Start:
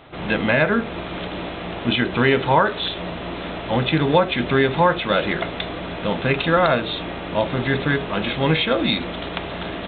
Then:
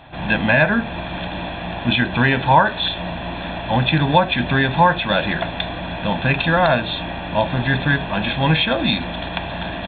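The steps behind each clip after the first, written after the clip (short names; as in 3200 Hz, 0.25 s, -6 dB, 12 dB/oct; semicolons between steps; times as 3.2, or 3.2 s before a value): comb 1.2 ms, depth 66%; gain +1 dB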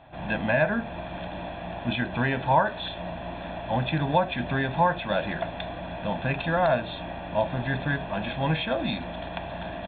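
LPF 2500 Hz 6 dB/oct; bell 640 Hz +5 dB 0.51 oct; gain -9 dB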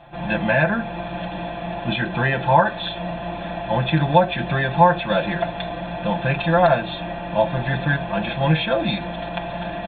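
comb 5.8 ms, depth 99%; gain +3 dB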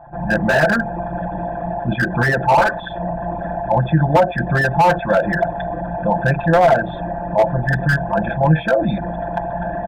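formant sharpening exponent 2; resonant high shelf 2100 Hz -9.5 dB, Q 3; slew limiter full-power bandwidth 170 Hz; gain +4 dB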